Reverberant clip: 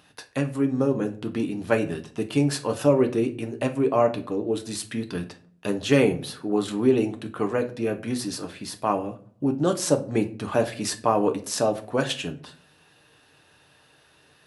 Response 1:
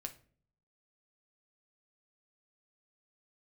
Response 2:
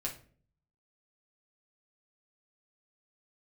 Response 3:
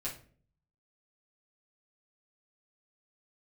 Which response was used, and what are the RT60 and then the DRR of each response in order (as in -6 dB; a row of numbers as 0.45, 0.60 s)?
1; not exponential, 0.45 s, 0.45 s; 4.5, -2.0, -6.5 dB